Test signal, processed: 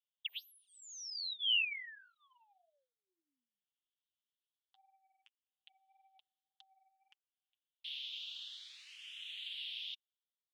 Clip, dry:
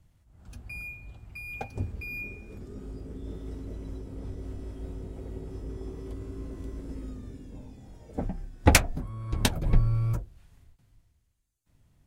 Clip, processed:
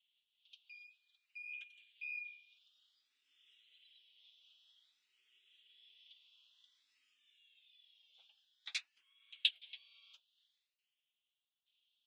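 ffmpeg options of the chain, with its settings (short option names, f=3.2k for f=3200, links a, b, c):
-filter_complex "[0:a]aemphasis=mode=production:type=bsi,flanger=delay=3.4:depth=5.3:regen=21:speed=1.8:shape=sinusoidal,asoftclip=type=tanh:threshold=-13dB,asuperpass=centerf=3200:order=4:qfactor=3.6,asplit=2[a][b];[b]afreqshift=0.53[c];[a][c]amix=inputs=2:normalize=1,volume=8dB"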